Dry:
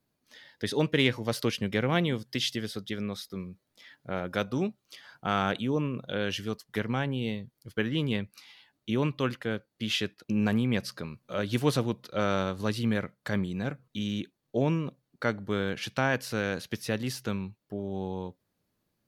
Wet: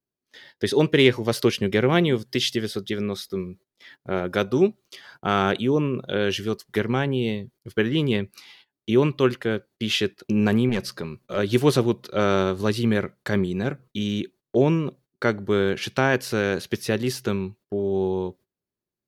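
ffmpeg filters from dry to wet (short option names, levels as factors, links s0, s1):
-filter_complex "[0:a]asettb=1/sr,asplit=3[s0][s1][s2];[s0]atrim=end=10.694[s3];[s1]atrim=start=10.69:end=11.37,asetpts=PTS-STARTPTS,afade=t=in:d=0.004:c=qsin,afade=t=out:st=0.676:d=0.004:c=qsin,aeval=exprs='(tanh(14.1*val(0)+0.15)-tanh(0.15))/14.1':c=same[s4];[s2]atrim=start=11.366[s5];[s3][s4]acrossfade=d=0.004:c1=hsin:c2=qsin[s6];[s6][s5]acrossfade=d=0.004:c1=qsin:c2=hsin,agate=range=0.112:threshold=0.002:ratio=16:detection=peak,equalizer=f=380:w=5.8:g=10.5,volume=1.88"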